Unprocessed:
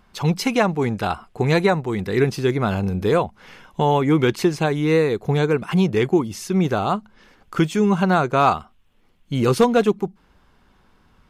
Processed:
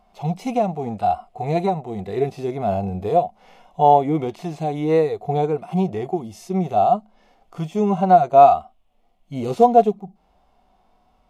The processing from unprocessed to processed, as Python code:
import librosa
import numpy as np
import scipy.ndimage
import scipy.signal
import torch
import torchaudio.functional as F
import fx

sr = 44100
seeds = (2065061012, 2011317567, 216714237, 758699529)

y = fx.peak_eq(x, sr, hz=710.0, db=14.0, octaves=0.57)
y = fx.hpss(y, sr, part='percussive', gain_db=-18)
y = fx.graphic_eq_31(y, sr, hz=(125, 630, 1600), db=(-8, 4, -10))
y = y * librosa.db_to_amplitude(-2.5)